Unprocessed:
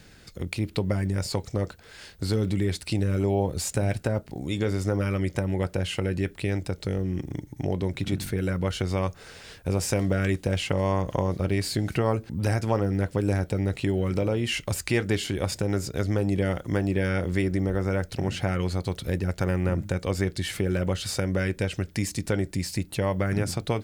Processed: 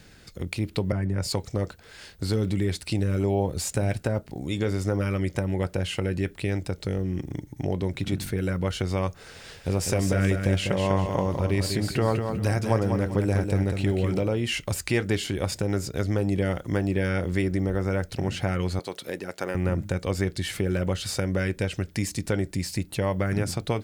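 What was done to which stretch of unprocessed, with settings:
0:00.92–0:01.33: multiband upward and downward expander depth 100%
0:09.16–0:14.20: repeating echo 198 ms, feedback 30%, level −6 dB
0:18.79–0:19.55: high-pass filter 330 Hz

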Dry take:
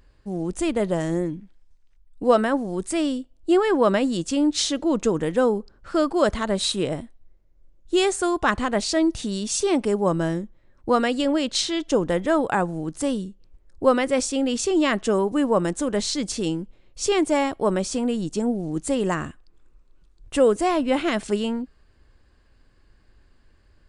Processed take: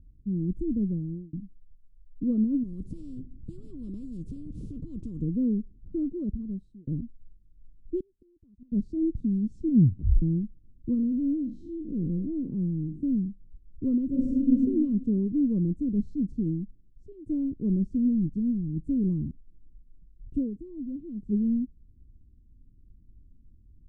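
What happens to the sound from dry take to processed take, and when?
0:00.77–0:01.33: fade out
0:02.63–0:05.22: every bin compressed towards the loudest bin 10 to 1
0:05.95–0:06.87: fade out
0:08.00–0:08.72: gate with flip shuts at −17 dBFS, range −31 dB
0:09.53: tape stop 0.69 s
0:10.94–0:13.03: spectrum smeared in time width 121 ms
0:14.06–0:14.52: thrown reverb, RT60 1.2 s, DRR −5 dB
0:16.42–0:17.26: fade out, to −23 dB
0:18.26–0:18.82: parametric band 350 Hz −6 dB 1.4 octaves
0:20.37–0:21.32: duck −9.5 dB, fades 0.14 s
whole clip: inverse Chebyshev low-pass filter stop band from 680 Hz, stop band 50 dB; level +3 dB

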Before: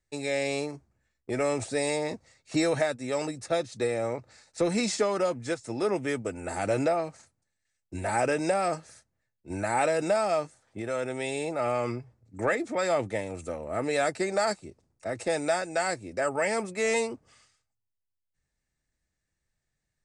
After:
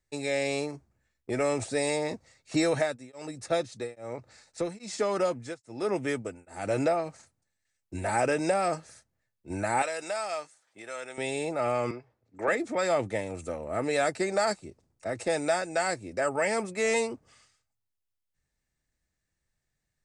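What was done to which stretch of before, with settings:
0:02.71–0:07.06: tremolo along a rectified sine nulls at 1.2 Hz
0:09.82–0:11.18: high-pass filter 1,500 Hz 6 dB per octave
0:11.91–0:12.48: three-way crossover with the lows and the highs turned down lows −14 dB, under 320 Hz, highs −15 dB, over 5,200 Hz

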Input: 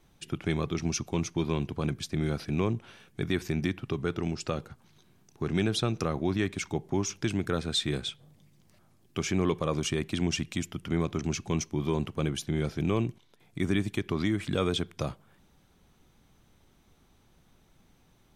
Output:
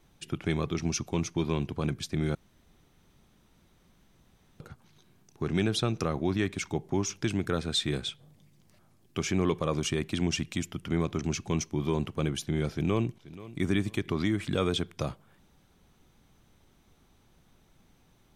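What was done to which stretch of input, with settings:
0:02.35–0:04.60: fill with room tone
0:12.72–0:13.61: delay throw 480 ms, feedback 30%, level −17.5 dB

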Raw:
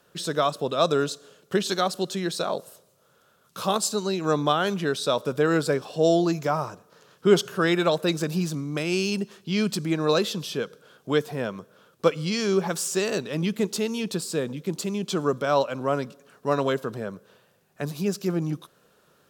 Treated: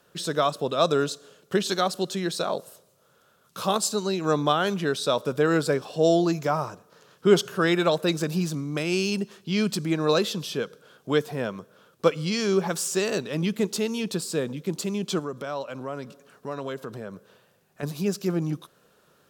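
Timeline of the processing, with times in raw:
0:15.19–0:17.83: downward compressor 2 to 1, threshold −35 dBFS

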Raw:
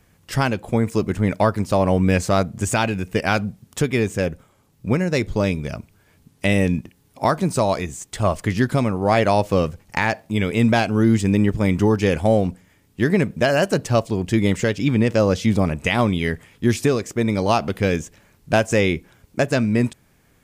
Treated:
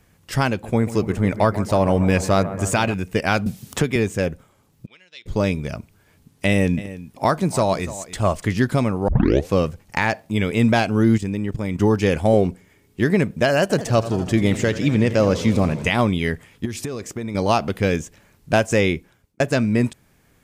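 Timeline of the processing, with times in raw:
0:00.49–0:02.94: bucket-brigade delay 142 ms, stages 2,048, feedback 75%, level −14.5 dB
0:03.46–0:03.96: multiband upward and downward compressor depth 70%
0:04.86–0:05.26: resonant band-pass 3,300 Hz, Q 8.6
0:06.48–0:08.49: single-tap delay 292 ms −15.5 dB
0:09.08: tape start 0.44 s
0:11.17–0:11.80: output level in coarse steps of 12 dB
0:12.33–0:13.01: hollow resonant body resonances 390/2,200 Hz, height 10 dB
0:13.61–0:15.90: feedback echo with a swinging delay time 82 ms, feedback 74%, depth 187 cents, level −14 dB
0:16.65–0:17.35: downward compressor 10 to 1, threshold −23 dBFS
0:18.89–0:19.40: fade out

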